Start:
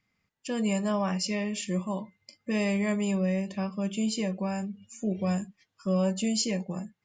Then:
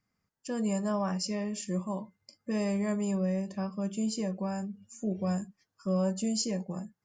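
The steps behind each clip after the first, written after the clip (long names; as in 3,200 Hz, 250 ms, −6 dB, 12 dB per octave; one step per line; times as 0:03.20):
flat-topped bell 2,800 Hz −9 dB 1.2 octaves
level −2.5 dB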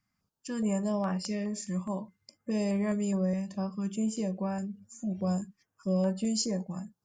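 notch on a step sequencer 4.8 Hz 440–6,300 Hz
level +1 dB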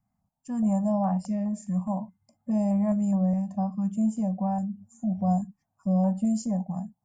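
drawn EQ curve 240 Hz 0 dB, 410 Hz −23 dB, 730 Hz +7 dB, 1,300 Hz −13 dB, 4,400 Hz −24 dB, 7,800 Hz −10 dB
level +5.5 dB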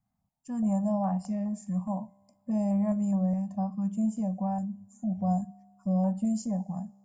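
tuned comb filter 66 Hz, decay 1.6 s, harmonics all, mix 30%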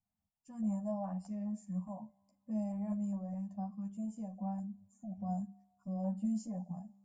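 multi-voice chorus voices 4, 0.58 Hz, delay 12 ms, depth 2.5 ms
level −8 dB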